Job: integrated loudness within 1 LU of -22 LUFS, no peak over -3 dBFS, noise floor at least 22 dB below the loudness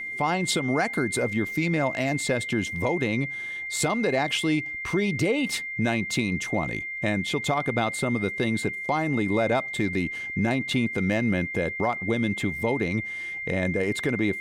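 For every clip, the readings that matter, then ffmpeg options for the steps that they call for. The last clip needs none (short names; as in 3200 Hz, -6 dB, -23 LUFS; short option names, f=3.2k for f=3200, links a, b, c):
steady tone 2100 Hz; tone level -31 dBFS; loudness -26.0 LUFS; peak -12.5 dBFS; loudness target -22.0 LUFS
-> -af "bandreject=f=2.1k:w=30"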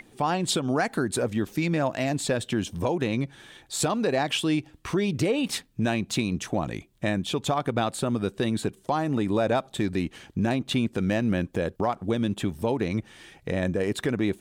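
steady tone none; loudness -27.0 LUFS; peak -13.0 dBFS; loudness target -22.0 LUFS
-> -af "volume=5dB"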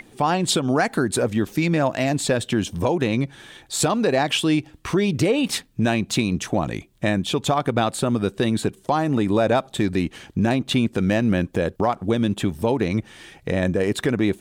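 loudness -22.0 LUFS; peak -8.0 dBFS; noise floor -52 dBFS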